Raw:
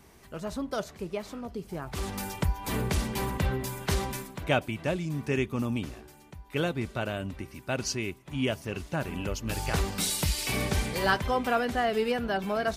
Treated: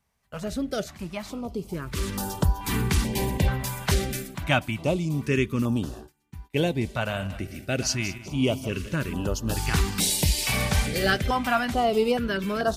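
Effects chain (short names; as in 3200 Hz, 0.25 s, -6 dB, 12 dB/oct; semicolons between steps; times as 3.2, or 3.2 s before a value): 6.87–8.95 regenerating reverse delay 0.101 s, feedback 60%, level -13 dB; gate -47 dBFS, range -23 dB; stepped notch 2.3 Hz 340–2200 Hz; gain +5.5 dB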